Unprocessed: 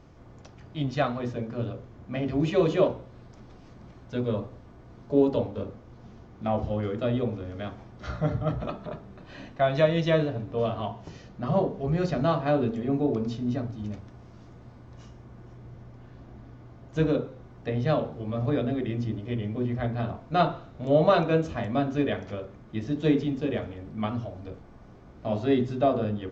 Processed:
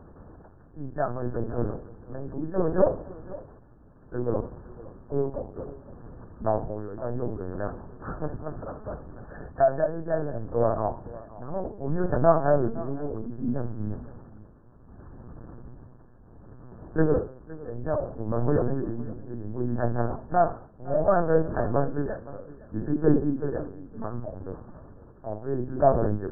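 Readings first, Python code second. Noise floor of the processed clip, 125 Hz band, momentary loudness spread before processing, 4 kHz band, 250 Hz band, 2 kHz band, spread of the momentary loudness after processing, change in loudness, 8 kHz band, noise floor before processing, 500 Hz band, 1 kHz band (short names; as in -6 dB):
-52 dBFS, -2.0 dB, 17 LU, under -40 dB, -2.5 dB, -4.0 dB, 20 LU, -0.5 dB, n/a, -50 dBFS, +0.5 dB, +1.5 dB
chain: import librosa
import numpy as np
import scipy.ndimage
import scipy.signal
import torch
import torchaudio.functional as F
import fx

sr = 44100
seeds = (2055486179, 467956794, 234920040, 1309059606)

p1 = fx.wiener(x, sr, points=9)
p2 = 10.0 ** (-19.0 / 20.0) * np.tanh(p1 / 10.0 ** (-19.0 / 20.0))
p3 = p1 + (p2 * librosa.db_to_amplitude(-4.0))
p4 = fx.lpc_vocoder(p3, sr, seeds[0], excitation='pitch_kept', order=8)
p5 = fx.brickwall_lowpass(p4, sr, high_hz=1800.0)
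p6 = fx.dynamic_eq(p5, sr, hz=670.0, q=6.7, threshold_db=-36.0, ratio=4.0, max_db=5)
p7 = p6 * (1.0 - 0.71 / 2.0 + 0.71 / 2.0 * np.cos(2.0 * np.pi * 0.65 * (np.arange(len(p6)) / sr)))
y = p7 + fx.echo_single(p7, sr, ms=513, db=-18.5, dry=0)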